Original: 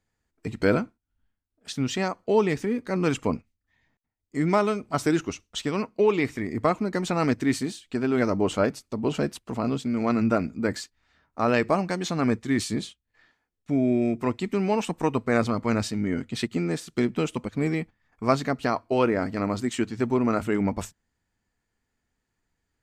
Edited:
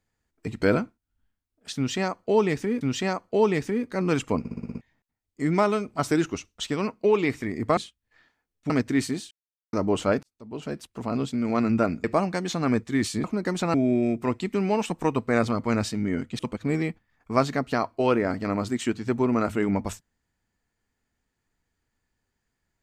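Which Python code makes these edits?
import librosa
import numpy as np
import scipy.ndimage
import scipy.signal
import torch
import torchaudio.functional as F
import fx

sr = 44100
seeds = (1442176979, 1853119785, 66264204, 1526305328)

y = fx.edit(x, sr, fx.repeat(start_s=1.76, length_s=1.05, count=2),
    fx.stutter_over(start_s=3.34, slice_s=0.06, count=7),
    fx.swap(start_s=6.72, length_s=0.5, other_s=12.8, other_length_s=0.93),
    fx.silence(start_s=7.83, length_s=0.42),
    fx.fade_in_span(start_s=8.75, length_s=1.02),
    fx.cut(start_s=10.56, length_s=1.04),
    fx.cut(start_s=16.38, length_s=0.93), tone=tone)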